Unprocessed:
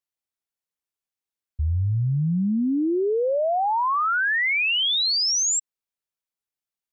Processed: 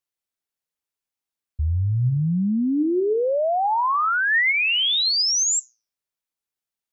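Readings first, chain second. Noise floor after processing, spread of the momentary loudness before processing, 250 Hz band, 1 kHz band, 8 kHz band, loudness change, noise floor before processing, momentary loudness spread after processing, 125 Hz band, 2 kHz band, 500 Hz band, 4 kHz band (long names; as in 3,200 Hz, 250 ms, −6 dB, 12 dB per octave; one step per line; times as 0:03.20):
below −85 dBFS, 5 LU, +1.0 dB, +1.5 dB, can't be measured, +1.5 dB, below −85 dBFS, 6 LU, +1.5 dB, +2.0 dB, +1.0 dB, +1.5 dB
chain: flanger 1.1 Hz, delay 6.1 ms, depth 3.9 ms, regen +89%
level +6 dB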